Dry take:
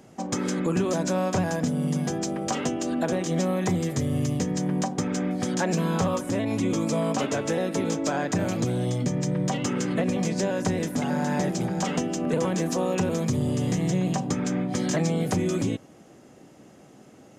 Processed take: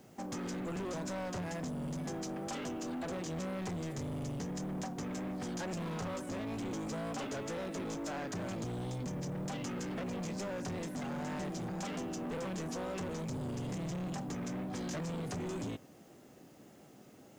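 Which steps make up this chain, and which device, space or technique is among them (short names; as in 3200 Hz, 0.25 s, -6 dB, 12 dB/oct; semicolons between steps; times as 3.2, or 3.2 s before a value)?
compact cassette (soft clip -29.5 dBFS, distortion -8 dB; LPF 9300 Hz 12 dB/oct; wow and flutter; white noise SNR 32 dB); gain -6.5 dB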